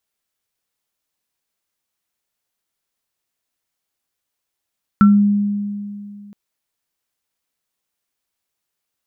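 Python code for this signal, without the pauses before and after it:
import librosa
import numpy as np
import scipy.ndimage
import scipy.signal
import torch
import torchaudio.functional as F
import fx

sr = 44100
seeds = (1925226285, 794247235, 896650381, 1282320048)

y = fx.additive_free(sr, length_s=1.32, hz=204.0, level_db=-5.5, upper_db=(-6,), decay_s=2.48, upper_decays_s=(0.22,), upper_hz=(1350.0,))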